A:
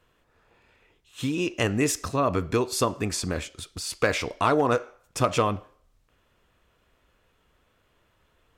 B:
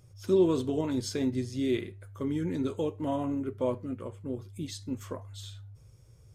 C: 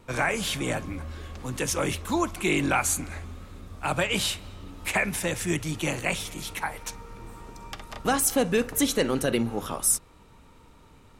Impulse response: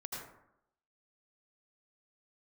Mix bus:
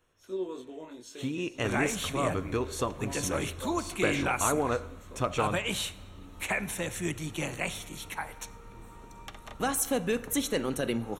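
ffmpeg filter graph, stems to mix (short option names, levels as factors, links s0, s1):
-filter_complex "[0:a]highshelf=f=8100:g=-5,volume=0.447,asplit=2[s0][s1];[s1]volume=0.112[s2];[1:a]highpass=360,flanger=delay=19:depth=6:speed=0.55,volume=0.422,asplit=2[s3][s4];[s4]volume=0.133[s5];[2:a]adelay=1550,volume=0.501,asplit=2[s6][s7];[s7]volume=0.141[s8];[3:a]atrim=start_sample=2205[s9];[s2][s5][s8]amix=inputs=3:normalize=0[s10];[s10][s9]afir=irnorm=-1:irlink=0[s11];[s0][s3][s6][s11]amix=inputs=4:normalize=0,asuperstop=centerf=4900:order=4:qfactor=5.9"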